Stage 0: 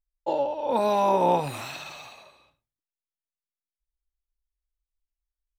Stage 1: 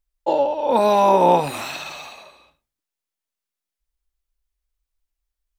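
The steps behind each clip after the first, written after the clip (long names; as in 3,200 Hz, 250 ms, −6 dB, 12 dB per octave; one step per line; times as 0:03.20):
parametric band 120 Hz −14 dB 0.35 octaves
level +7 dB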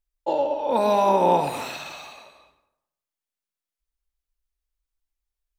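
dense smooth reverb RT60 0.81 s, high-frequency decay 0.5×, pre-delay 85 ms, DRR 9.5 dB
level −4.5 dB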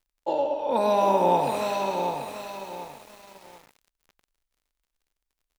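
surface crackle 62 per second −56 dBFS
repeating echo 95 ms, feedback 50%, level −16 dB
feedback echo at a low word length 737 ms, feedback 35%, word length 7 bits, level −6 dB
level −2.5 dB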